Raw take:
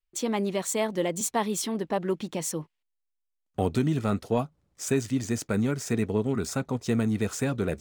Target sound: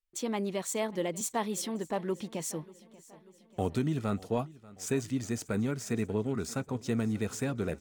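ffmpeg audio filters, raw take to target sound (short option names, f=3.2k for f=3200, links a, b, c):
-af "aecho=1:1:589|1178|1767|2356|2945:0.0891|0.0517|0.03|0.0174|0.0101,volume=-5dB"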